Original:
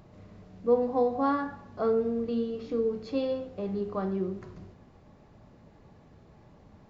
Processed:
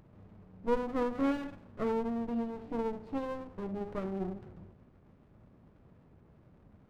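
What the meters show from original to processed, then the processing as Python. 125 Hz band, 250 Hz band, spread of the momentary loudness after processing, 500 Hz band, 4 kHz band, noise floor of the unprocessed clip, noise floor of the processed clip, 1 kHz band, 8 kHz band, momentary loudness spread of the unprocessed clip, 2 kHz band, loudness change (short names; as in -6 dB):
-4.0 dB, -3.0 dB, 10 LU, -7.5 dB, -5.5 dB, -56 dBFS, -61 dBFS, -5.5 dB, n/a, 9 LU, -1.0 dB, -6.0 dB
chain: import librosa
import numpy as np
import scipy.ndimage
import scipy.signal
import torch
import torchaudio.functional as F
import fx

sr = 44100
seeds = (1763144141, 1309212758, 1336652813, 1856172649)

y = scipy.signal.sosfilt(scipy.signal.butter(2, 1900.0, 'lowpass', fs=sr, output='sos'), x)
y = fx.running_max(y, sr, window=33)
y = y * 10.0 ** (-4.0 / 20.0)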